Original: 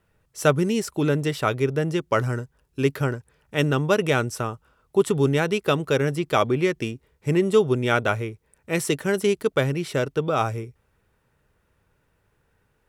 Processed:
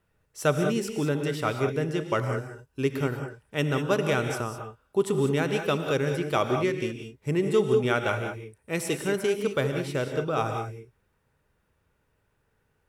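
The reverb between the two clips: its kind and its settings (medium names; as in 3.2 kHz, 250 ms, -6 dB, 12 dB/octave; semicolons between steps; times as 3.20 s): gated-style reverb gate 220 ms rising, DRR 5 dB; trim -5 dB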